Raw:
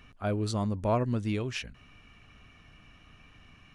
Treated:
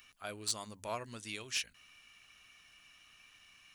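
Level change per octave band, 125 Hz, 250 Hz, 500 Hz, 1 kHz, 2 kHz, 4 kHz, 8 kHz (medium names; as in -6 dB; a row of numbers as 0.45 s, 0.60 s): -22.5 dB, -19.5 dB, -13.5 dB, -9.5 dB, -2.0 dB, +2.0 dB, +7.0 dB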